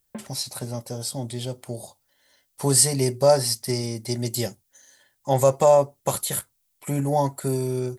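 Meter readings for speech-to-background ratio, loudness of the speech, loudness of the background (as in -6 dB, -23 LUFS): 20.0 dB, -23.0 LUFS, -43.0 LUFS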